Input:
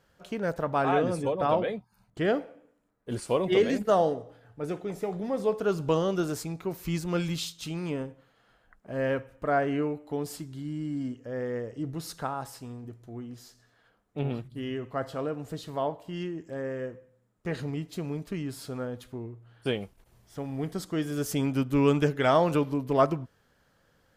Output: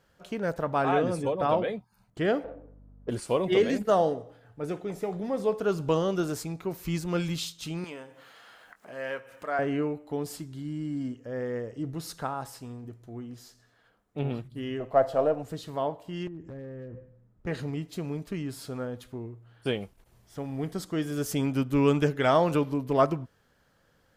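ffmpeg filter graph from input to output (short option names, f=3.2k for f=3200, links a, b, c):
-filter_complex "[0:a]asettb=1/sr,asplit=3[a][b][c];[a]atrim=end=2.444[d];[b]atrim=start=2.44:end=3.1,asetpts=PTS-STARTPTS,afade=t=in:d=0.004:c=qsin,afade=t=out:st=0.656:d=0.004:c=qsin,equalizer=f=570:w=0.33:g=9,adynamicsmooth=sensitivity=5.5:basefreq=1.1k,aeval=exprs='val(0)+0.00282*(sin(2*PI*50*n/s)+sin(2*PI*2*50*n/s)/2+sin(2*PI*3*50*n/s)/3+sin(2*PI*4*50*n/s)/4+sin(2*PI*5*50*n/s)/5)':c=same[e];[c]atrim=start=3.096[f];[d][e]acrossfade=d=0.004:c1=hsin:c2=qsin[g];[g][f]acrossfade=d=0.004:c1=qsin:c2=hsin,asettb=1/sr,asplit=3[h][i][j];[h]atrim=end=7.844[k];[i]atrim=start=7.84:end=9.59,asetpts=PTS-STARTPTS,afade=t=in:d=0.004:c=qsin,afade=t=out:st=1.746:d=0.004:c=qsin,highpass=f=1.1k:p=1,acompressor=mode=upward:threshold=-38dB:ratio=2.5:attack=3.2:release=140:knee=2.83:detection=peak,asplit=2[l][m];[m]adelay=24,volume=-12dB[n];[l][n]amix=inputs=2:normalize=0,atrim=end_sample=77175[o];[j]atrim=start=9.586[p];[k][o]acrossfade=d=0.004:c1=hsin:c2=qsin[q];[q][p]acrossfade=d=0.004:c1=qsin:c2=hsin,asettb=1/sr,asplit=3[r][s][t];[r]atrim=end=14.804[u];[s]atrim=start=14.8:end=15.43,asetpts=PTS-STARTPTS,afade=t=in:d=0.004:c=qsin,afade=t=out:st=0.626:d=0.004:c=qsin,aeval=exprs='if(lt(val(0),0),0.708*val(0),val(0))':c=same,equalizer=f=640:t=o:w=0.85:g=15[v];[t]atrim=start=15.426[w];[u][v]acrossfade=d=0.004:c1=hsin:c2=qsin[x];[x][w]acrossfade=d=0.004:c1=qsin:c2=hsin,asettb=1/sr,asplit=3[y][z][aa];[y]atrim=end=16.274[ab];[z]atrim=start=16.27:end=17.47,asetpts=PTS-STARTPTS,afade=t=in:d=0.004:c=qsin,afade=t=out:st=1.196:d=0.004:c=qsin,aemphasis=mode=reproduction:type=riaa,acompressor=threshold=-36dB:ratio=16:attack=3.2:release=140:knee=1:detection=peak,aeval=exprs='0.02*(abs(mod(val(0)/0.02+3,4)-2)-1)':c=same[ac];[aa]atrim=start=17.466[ad];[ab][ac]acrossfade=d=0.004:c1=hsin:c2=qsin[ae];[ae][ad]acrossfade=d=0.004:c1=qsin:c2=hsin"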